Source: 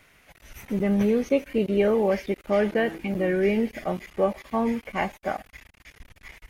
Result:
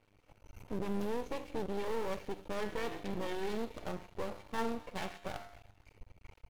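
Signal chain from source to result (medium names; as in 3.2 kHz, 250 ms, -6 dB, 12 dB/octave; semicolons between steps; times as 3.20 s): local Wiener filter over 25 samples; comb 2.2 ms, depth 39%; on a send: feedback echo behind a high-pass 130 ms, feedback 51%, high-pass 1.4 kHz, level -18 dB; on the sum: peak limiter -23 dBFS, peak gain reduction 12 dB; feedback comb 100 Hz, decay 0.6 s, harmonics odd, mix 80%; simulated room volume 880 m³, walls furnished, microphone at 0.38 m; half-wave rectifier; treble shelf 3.7 kHz +11.5 dB; trim +9 dB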